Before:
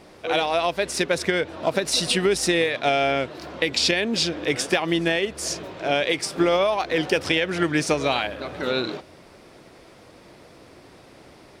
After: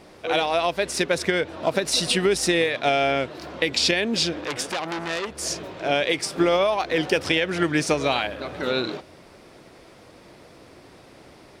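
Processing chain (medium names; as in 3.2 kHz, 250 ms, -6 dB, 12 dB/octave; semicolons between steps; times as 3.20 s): 4.41–5.38 s: transformer saturation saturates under 4 kHz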